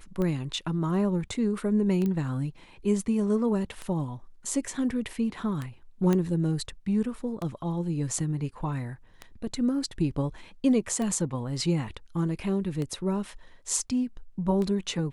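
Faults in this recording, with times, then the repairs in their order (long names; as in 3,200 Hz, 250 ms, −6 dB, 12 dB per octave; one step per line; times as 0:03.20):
scratch tick 33 1/3 rpm −20 dBFS
0:02.06: click −19 dBFS
0:06.13: click −14 dBFS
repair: click removal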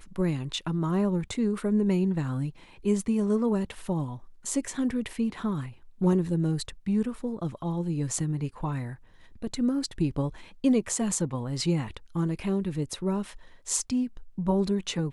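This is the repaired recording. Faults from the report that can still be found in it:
none of them is left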